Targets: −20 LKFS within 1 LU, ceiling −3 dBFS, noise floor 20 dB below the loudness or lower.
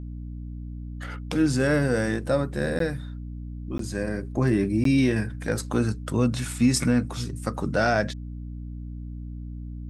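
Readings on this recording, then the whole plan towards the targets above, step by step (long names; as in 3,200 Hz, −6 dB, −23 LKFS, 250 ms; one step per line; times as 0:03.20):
number of dropouts 3; longest dropout 13 ms; mains hum 60 Hz; hum harmonics up to 300 Hz; level of the hum −33 dBFS; integrated loudness −25.0 LKFS; sample peak −9.5 dBFS; target loudness −20.0 LKFS
→ repair the gap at 0:02.79/0:03.78/0:04.84, 13 ms
hum removal 60 Hz, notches 5
level +5 dB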